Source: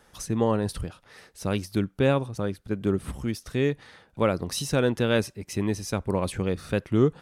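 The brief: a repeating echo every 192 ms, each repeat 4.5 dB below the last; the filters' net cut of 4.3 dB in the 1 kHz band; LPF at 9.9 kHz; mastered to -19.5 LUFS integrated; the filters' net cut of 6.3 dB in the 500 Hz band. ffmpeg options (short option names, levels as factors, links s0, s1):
-af "lowpass=9900,equalizer=f=500:t=o:g=-7,equalizer=f=1000:t=o:g=-3.5,aecho=1:1:192|384|576|768|960|1152|1344|1536|1728:0.596|0.357|0.214|0.129|0.0772|0.0463|0.0278|0.0167|0.01,volume=2.82"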